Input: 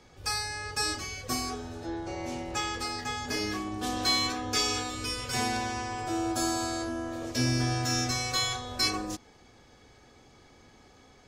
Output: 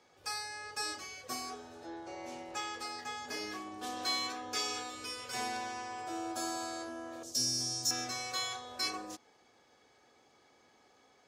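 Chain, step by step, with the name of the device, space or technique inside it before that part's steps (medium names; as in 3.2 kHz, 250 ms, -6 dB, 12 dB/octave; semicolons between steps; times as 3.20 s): filter by subtraction (in parallel: low-pass 640 Hz 12 dB/octave + polarity flip); 7.23–7.91 s: on the sum: FFT filter 150 Hz 0 dB, 2.3 kHz -15 dB, 5.6 kHz +12 dB; trim -8 dB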